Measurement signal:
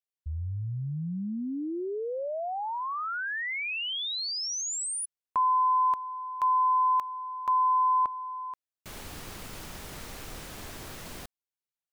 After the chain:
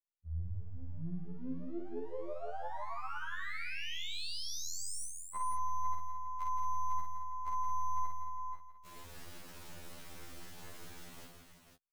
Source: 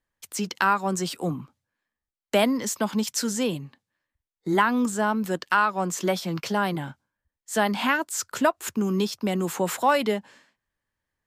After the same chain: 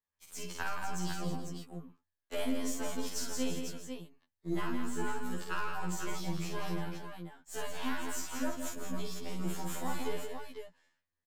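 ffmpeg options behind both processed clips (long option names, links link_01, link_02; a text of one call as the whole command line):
ffmpeg -i in.wav -filter_complex "[0:a]aeval=exprs='if(lt(val(0),0),0.447*val(0),val(0))':channel_layout=same,acrossover=split=240|5400[link_01][link_02][link_03];[link_02]acompressor=threshold=-30dB:ratio=3:attack=19:release=252:knee=2.83:detection=peak[link_04];[link_01][link_04][link_03]amix=inputs=3:normalize=0,aecho=1:1:50|104|168|218|327|498:0.668|0.106|0.447|0.355|0.2|0.473,afftfilt=real='re*2*eq(mod(b,4),0)':imag='im*2*eq(mod(b,4),0)':win_size=2048:overlap=0.75,volume=-8dB" out.wav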